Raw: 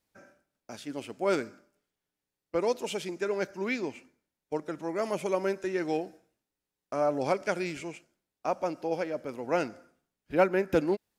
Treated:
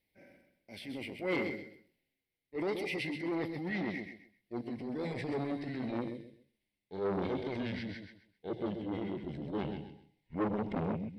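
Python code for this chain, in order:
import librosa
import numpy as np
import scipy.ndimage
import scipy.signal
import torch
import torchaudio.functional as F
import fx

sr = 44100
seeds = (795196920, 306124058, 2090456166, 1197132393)

y = fx.pitch_glide(x, sr, semitones=-10.5, runs='starting unshifted')
y = fx.peak_eq(y, sr, hz=2100.0, db=13.0, octaves=0.23)
y = fx.transient(y, sr, attack_db=-8, sustain_db=5)
y = fx.fixed_phaser(y, sr, hz=3000.0, stages=4)
y = fx.echo_feedback(y, sr, ms=130, feedback_pct=26, wet_db=-7.5)
y = fx.transformer_sat(y, sr, knee_hz=890.0)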